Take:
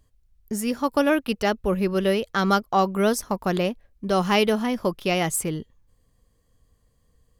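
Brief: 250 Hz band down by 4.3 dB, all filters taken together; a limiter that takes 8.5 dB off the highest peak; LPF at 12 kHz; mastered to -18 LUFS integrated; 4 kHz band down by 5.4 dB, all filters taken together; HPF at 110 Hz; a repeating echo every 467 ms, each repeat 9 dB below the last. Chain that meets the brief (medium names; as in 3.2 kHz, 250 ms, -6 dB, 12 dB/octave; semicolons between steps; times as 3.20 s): high-pass 110 Hz; low-pass 12 kHz; peaking EQ 250 Hz -5.5 dB; peaking EQ 4 kHz -8.5 dB; peak limiter -17 dBFS; feedback delay 467 ms, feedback 35%, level -9 dB; trim +10 dB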